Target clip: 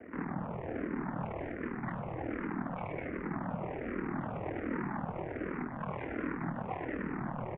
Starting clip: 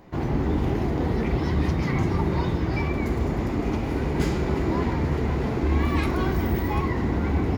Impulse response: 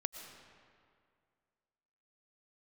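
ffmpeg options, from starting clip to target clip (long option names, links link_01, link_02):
-filter_complex "[0:a]alimiter=limit=-18.5dB:level=0:latency=1,aresample=8000,asoftclip=type=tanh:threshold=-35.5dB,aresample=44100,aeval=exprs='val(0)*sin(2*PI*20*n/s)':channel_layout=same,highpass=frequency=210:width_type=q:width=0.5412,highpass=frequency=210:width_type=q:width=1.307,lowpass=frequency=2300:width_type=q:width=0.5176,lowpass=frequency=2300:width_type=q:width=0.7071,lowpass=frequency=2300:width_type=q:width=1.932,afreqshift=-73,asplit=8[link_01][link_02][link_03][link_04][link_05][link_06][link_07][link_08];[link_02]adelay=109,afreqshift=-65,volume=-13dB[link_09];[link_03]adelay=218,afreqshift=-130,volume=-17.3dB[link_10];[link_04]adelay=327,afreqshift=-195,volume=-21.6dB[link_11];[link_05]adelay=436,afreqshift=-260,volume=-25.9dB[link_12];[link_06]adelay=545,afreqshift=-325,volume=-30.2dB[link_13];[link_07]adelay=654,afreqshift=-390,volume=-34.5dB[link_14];[link_08]adelay=763,afreqshift=-455,volume=-38.8dB[link_15];[link_01][link_09][link_10][link_11][link_12][link_13][link_14][link_15]amix=inputs=8:normalize=0,asplit=2[link_16][link_17];[link_17]afreqshift=-1.3[link_18];[link_16][link_18]amix=inputs=2:normalize=1,volume=8.5dB"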